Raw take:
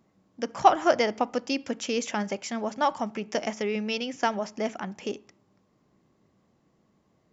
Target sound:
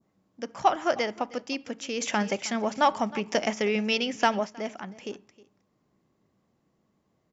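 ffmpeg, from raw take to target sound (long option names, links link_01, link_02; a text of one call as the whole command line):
ffmpeg -i in.wav -filter_complex "[0:a]aecho=1:1:314:0.1,asplit=3[link_01][link_02][link_03];[link_01]afade=type=out:start_time=2:duration=0.02[link_04];[link_02]acontrast=76,afade=type=in:start_time=2:duration=0.02,afade=type=out:start_time=4.44:duration=0.02[link_05];[link_03]afade=type=in:start_time=4.44:duration=0.02[link_06];[link_04][link_05][link_06]amix=inputs=3:normalize=0,adynamicequalizer=threshold=0.0158:dfrequency=2600:dqfactor=0.72:tfrequency=2600:tqfactor=0.72:attack=5:release=100:ratio=0.375:range=1.5:mode=boostabove:tftype=bell,volume=-4.5dB" out.wav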